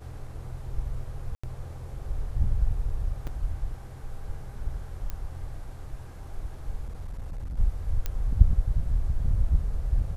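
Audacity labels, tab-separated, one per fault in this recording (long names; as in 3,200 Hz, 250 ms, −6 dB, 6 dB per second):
1.350000	1.440000	drop-out 85 ms
3.270000	3.270000	drop-out 4.7 ms
5.100000	5.100000	click −20 dBFS
6.840000	7.570000	clipping −31 dBFS
8.060000	8.060000	click −15 dBFS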